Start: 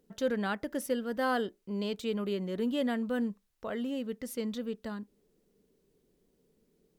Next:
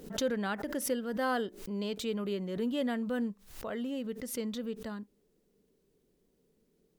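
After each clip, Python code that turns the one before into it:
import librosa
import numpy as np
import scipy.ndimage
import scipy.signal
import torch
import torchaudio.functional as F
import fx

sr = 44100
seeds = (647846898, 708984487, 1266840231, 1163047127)

y = fx.pre_swell(x, sr, db_per_s=100.0)
y = y * 10.0 ** (-1.5 / 20.0)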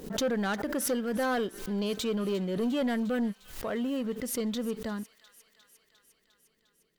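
y = fx.leveller(x, sr, passes=2)
y = fx.echo_wet_highpass(y, sr, ms=353, feedback_pct=70, hz=1700.0, wet_db=-16.0)
y = y * 10.0 ** (-2.0 / 20.0)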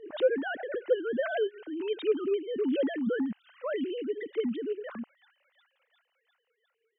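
y = fx.sine_speech(x, sr)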